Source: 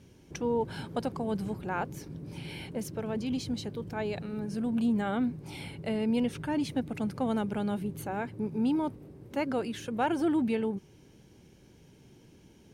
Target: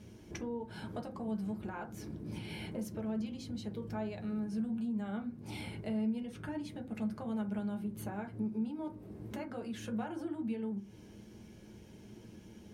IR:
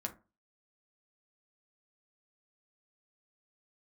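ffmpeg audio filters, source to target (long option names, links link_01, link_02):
-filter_complex "[0:a]acompressor=threshold=-41dB:ratio=12[link_01];[1:a]atrim=start_sample=2205[link_02];[link_01][link_02]afir=irnorm=-1:irlink=0,volume=2.5dB"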